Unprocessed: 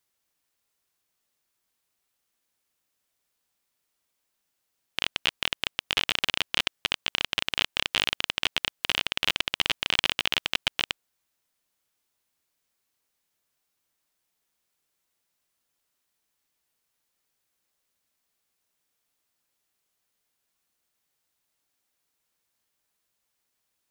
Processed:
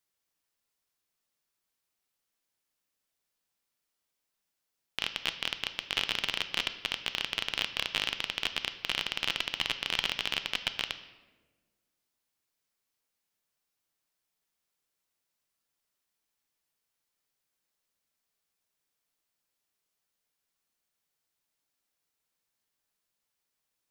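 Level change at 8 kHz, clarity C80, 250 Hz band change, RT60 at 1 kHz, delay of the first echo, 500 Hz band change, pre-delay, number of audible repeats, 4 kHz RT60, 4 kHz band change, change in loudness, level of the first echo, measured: -5.0 dB, 14.0 dB, -5.0 dB, 1.1 s, no echo, -5.0 dB, 4 ms, no echo, 0.75 s, -5.0 dB, -5.0 dB, no echo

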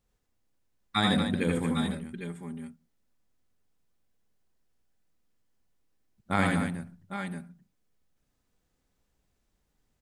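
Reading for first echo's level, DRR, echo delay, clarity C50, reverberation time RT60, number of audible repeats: -2.0 dB, no reverb, 81 ms, no reverb, no reverb, 3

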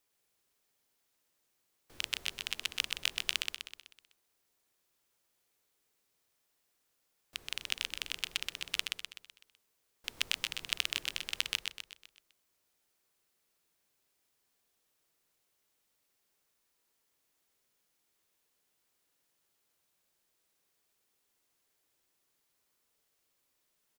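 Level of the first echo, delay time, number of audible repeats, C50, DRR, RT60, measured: -4.0 dB, 126 ms, 5, no reverb, no reverb, no reverb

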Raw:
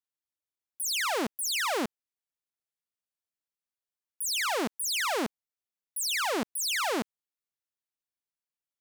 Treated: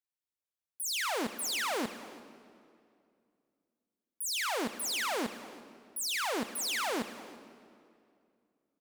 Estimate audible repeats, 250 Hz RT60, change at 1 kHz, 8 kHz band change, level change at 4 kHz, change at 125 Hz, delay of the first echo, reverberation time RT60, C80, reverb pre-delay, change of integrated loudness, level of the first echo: 1, 2.8 s, -3.5 dB, -3.5 dB, -3.5 dB, -3.5 dB, 341 ms, 2.4 s, 12.0 dB, 3 ms, -4.0 dB, -19.5 dB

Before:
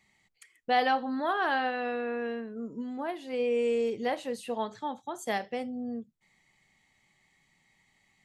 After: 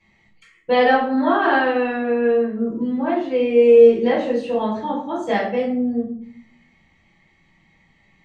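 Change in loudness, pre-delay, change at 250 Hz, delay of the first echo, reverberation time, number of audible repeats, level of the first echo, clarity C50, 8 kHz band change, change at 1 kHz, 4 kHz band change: +13.5 dB, 3 ms, +14.5 dB, no echo, 0.55 s, no echo, no echo, 5.0 dB, no reading, +8.5 dB, +6.5 dB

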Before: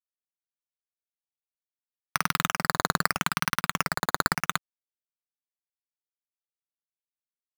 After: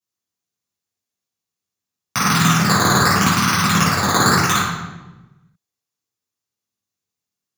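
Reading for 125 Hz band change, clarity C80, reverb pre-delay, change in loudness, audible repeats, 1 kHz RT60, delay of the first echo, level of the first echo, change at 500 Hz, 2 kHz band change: +18.5 dB, 2.5 dB, 3 ms, +11.5 dB, no echo, 1.0 s, no echo, no echo, +12.0 dB, +9.0 dB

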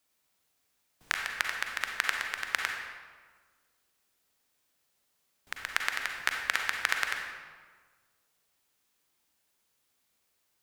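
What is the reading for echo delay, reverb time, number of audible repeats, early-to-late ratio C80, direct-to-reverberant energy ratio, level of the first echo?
no echo, 1.5 s, no echo, 5.0 dB, 2.0 dB, no echo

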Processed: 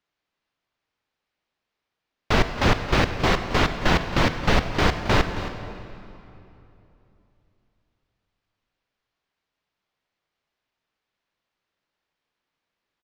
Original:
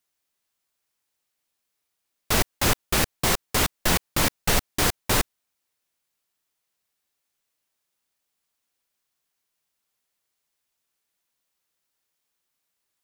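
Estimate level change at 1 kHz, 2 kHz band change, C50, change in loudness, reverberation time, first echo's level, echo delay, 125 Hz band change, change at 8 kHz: +4.0 dB, +3.0 dB, 7.5 dB, +0.5 dB, 3.0 s, -14.0 dB, 270 ms, +5.5 dB, -13.0 dB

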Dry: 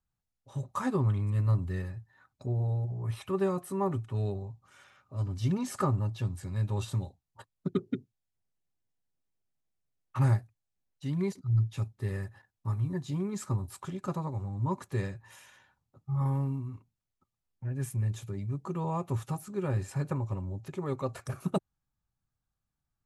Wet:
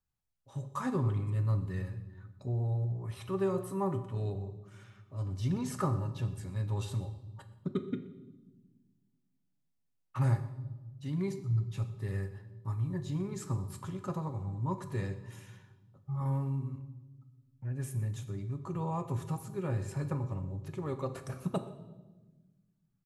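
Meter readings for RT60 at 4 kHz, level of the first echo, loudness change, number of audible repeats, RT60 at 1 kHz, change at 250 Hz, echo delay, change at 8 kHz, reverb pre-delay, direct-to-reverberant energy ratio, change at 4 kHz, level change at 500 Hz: 1.0 s, -20.5 dB, -3.0 dB, 1, 1.0 s, -2.5 dB, 123 ms, -3.0 dB, 3 ms, 8.5 dB, -3.0 dB, -2.5 dB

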